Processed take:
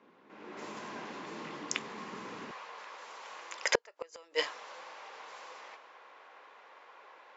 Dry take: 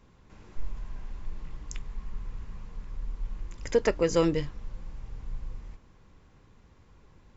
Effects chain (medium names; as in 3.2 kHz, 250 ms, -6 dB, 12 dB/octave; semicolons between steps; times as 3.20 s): level-controlled noise filter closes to 2.6 kHz, open at -24.5 dBFS; high-pass 250 Hz 24 dB/octave, from 2.51 s 580 Hz; level rider gain up to 11 dB; inverted gate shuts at -14 dBFS, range -38 dB; trim +2.5 dB